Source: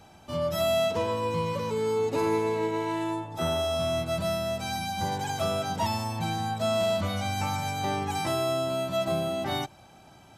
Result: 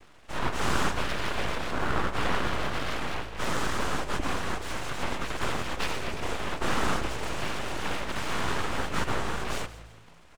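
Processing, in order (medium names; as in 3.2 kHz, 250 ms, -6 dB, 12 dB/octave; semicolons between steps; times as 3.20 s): low-pass 2.9 kHz 12 dB/octave; noise-vocoded speech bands 4; full-wave rectifier; frequency-shifting echo 169 ms, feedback 38%, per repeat +55 Hz, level -16 dB; trim +1.5 dB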